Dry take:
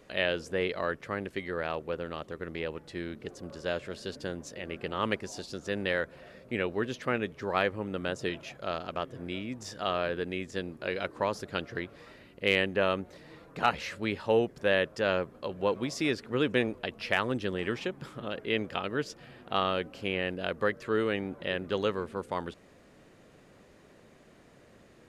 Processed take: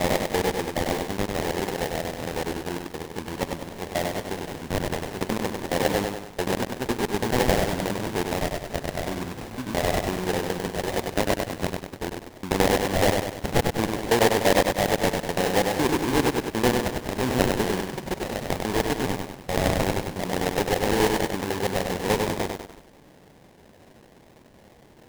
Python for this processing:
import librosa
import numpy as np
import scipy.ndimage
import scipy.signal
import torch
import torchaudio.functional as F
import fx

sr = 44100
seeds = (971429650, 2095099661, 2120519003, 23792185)

y = fx.block_reorder(x, sr, ms=84.0, group=4)
y = fx.sample_hold(y, sr, seeds[0], rate_hz=1300.0, jitter_pct=20)
y = fx.echo_crushed(y, sr, ms=98, feedback_pct=55, bits=8, wet_db=-4.0)
y = y * 10.0 ** (5.5 / 20.0)